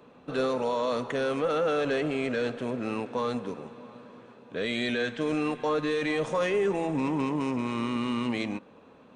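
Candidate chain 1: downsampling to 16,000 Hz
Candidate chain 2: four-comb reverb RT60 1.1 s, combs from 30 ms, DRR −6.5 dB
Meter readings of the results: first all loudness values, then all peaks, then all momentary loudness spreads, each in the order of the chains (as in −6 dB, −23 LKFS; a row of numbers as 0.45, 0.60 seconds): −29.0, −22.0 LKFS; −18.0, −7.5 dBFS; 9, 11 LU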